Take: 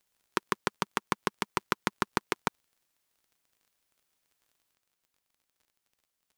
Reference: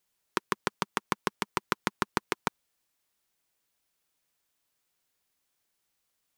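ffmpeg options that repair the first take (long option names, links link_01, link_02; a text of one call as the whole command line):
ffmpeg -i in.wav -af "adeclick=threshold=4,asetnsamples=nb_out_samples=441:pad=0,asendcmd='4.74 volume volume 4.5dB',volume=0dB" out.wav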